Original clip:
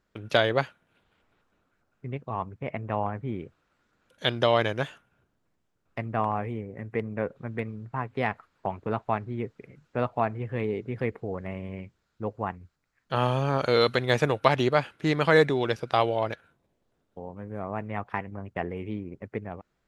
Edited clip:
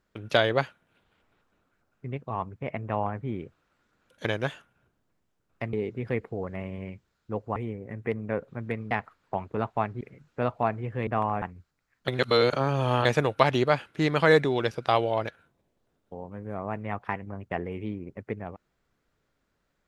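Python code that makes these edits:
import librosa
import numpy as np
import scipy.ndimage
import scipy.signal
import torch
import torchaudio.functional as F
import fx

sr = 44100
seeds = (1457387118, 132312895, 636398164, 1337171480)

y = fx.edit(x, sr, fx.cut(start_s=4.25, length_s=0.36),
    fx.swap(start_s=6.09, length_s=0.35, other_s=10.64, other_length_s=1.83),
    fx.cut(start_s=7.79, length_s=0.44),
    fx.cut(start_s=9.33, length_s=0.25),
    fx.reverse_span(start_s=13.13, length_s=0.97), tone=tone)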